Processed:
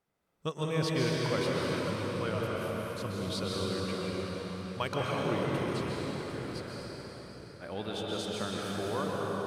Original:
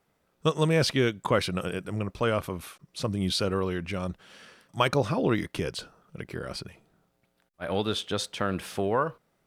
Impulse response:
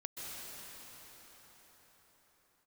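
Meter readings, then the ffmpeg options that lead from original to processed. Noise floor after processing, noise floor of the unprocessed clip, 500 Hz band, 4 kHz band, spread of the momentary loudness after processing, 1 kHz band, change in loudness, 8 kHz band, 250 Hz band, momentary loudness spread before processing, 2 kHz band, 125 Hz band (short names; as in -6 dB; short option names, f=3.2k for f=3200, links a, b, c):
-50 dBFS, -73 dBFS, -4.5 dB, -5.0 dB, 10 LU, -5.0 dB, -5.5 dB, -5.0 dB, -4.0 dB, 15 LU, -4.5 dB, -4.0 dB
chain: -filter_complex "[1:a]atrim=start_sample=2205[a];[0:a][a]afir=irnorm=-1:irlink=0,volume=-5dB"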